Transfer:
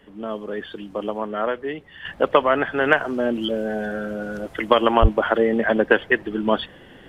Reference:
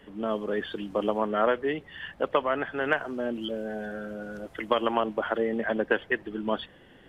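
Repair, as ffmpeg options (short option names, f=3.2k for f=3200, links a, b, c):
-filter_complex "[0:a]asplit=3[a][b][c];[a]afade=t=out:st=5.01:d=0.02[d];[b]highpass=f=140:w=0.5412,highpass=f=140:w=1.3066,afade=t=in:st=5.01:d=0.02,afade=t=out:st=5.13:d=0.02[e];[c]afade=t=in:st=5.13:d=0.02[f];[d][e][f]amix=inputs=3:normalize=0,asetnsamples=n=441:p=0,asendcmd='2.05 volume volume -8.5dB',volume=0dB"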